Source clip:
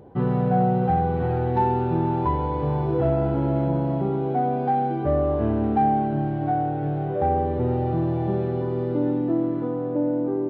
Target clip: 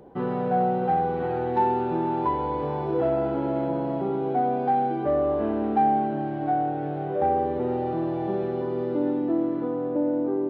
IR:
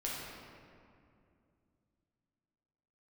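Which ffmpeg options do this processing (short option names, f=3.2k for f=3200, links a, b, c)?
-filter_complex "[0:a]equalizer=f=98:w=1.7:g=-14,acrossover=split=210[a][b];[a]alimiter=level_in=10dB:limit=-24dB:level=0:latency=1:release=151,volume=-10dB[c];[c][b]amix=inputs=2:normalize=0"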